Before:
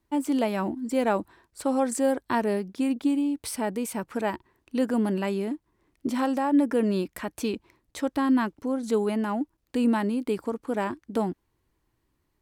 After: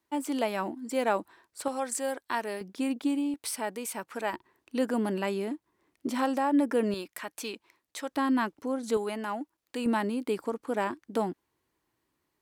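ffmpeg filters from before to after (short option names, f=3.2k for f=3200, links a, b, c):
-af "asetnsamples=n=441:p=0,asendcmd='1.68 highpass f 1200;2.61 highpass f 360;3.34 highpass f 790;4.33 highpass f 320;6.94 highpass f 1100;8.11 highpass f 360;8.97 highpass f 750;9.86 highpass f 320',highpass=f=510:p=1"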